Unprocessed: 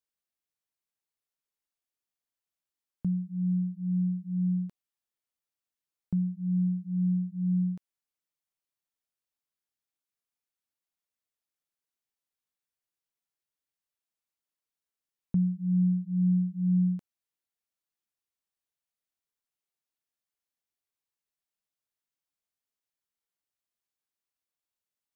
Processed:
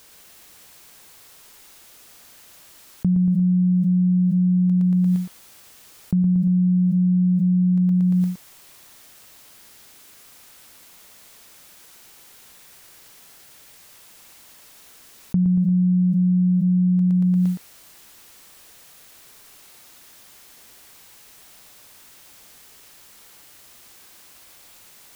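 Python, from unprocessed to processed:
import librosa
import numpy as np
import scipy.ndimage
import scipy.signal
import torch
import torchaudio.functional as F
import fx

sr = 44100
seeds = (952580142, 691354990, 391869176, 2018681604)

p1 = x + fx.echo_feedback(x, sr, ms=116, feedback_pct=42, wet_db=-4, dry=0)
p2 = fx.env_flatten(p1, sr, amount_pct=100)
y = F.gain(torch.from_numpy(p2), 1.5).numpy()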